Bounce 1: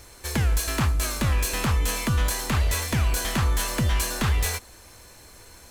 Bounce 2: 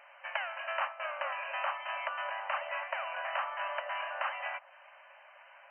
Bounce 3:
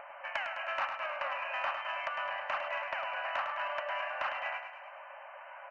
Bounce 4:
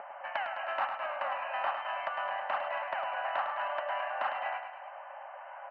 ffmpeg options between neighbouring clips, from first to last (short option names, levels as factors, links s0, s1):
-af "afftfilt=real='re*between(b*sr/4096,530,3100)':imag='im*between(b*sr/4096,530,3100)':win_size=4096:overlap=0.75,adynamicequalizer=threshold=0.00708:dfrequency=1600:dqfactor=0.7:tfrequency=1600:tqfactor=0.7:attack=5:release=100:ratio=0.375:range=3:mode=cutabove:tftype=highshelf,volume=0.891"
-filter_complex "[0:a]acrossover=split=1400[s0][s1];[s0]acompressor=mode=upward:threshold=0.01:ratio=2.5[s2];[s2][s1]amix=inputs=2:normalize=0,asoftclip=type=tanh:threshold=0.0668,aecho=1:1:104|208|312|416|520|624|728:0.422|0.232|0.128|0.0702|0.0386|0.0212|0.0117"
-af "highpass=f=130:w=0.5412,highpass=f=130:w=1.3066,equalizer=f=220:t=q:w=4:g=7,equalizer=f=410:t=q:w=4:g=7,equalizer=f=780:t=q:w=4:g=8,equalizer=f=2400:t=q:w=4:g=-7,lowpass=f=3900:w=0.5412,lowpass=f=3900:w=1.3066"